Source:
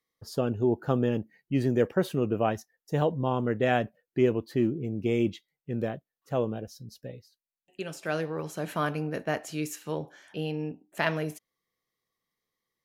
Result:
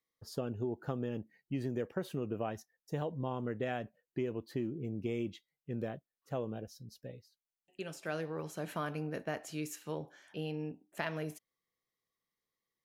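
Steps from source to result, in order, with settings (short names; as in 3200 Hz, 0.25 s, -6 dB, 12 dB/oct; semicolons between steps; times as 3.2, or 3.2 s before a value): compressor, threshold -26 dBFS, peak gain reduction 8.5 dB; gain -6 dB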